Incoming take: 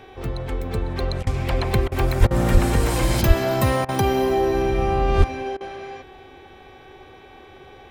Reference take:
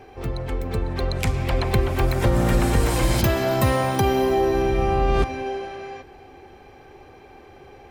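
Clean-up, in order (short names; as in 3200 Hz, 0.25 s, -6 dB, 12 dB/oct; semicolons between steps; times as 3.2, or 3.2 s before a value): de-hum 376.7 Hz, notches 10; de-plosive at 2.19/2.53/3.27/5.17; interpolate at 1.23/1.88/2.27/3.85/5.57, 36 ms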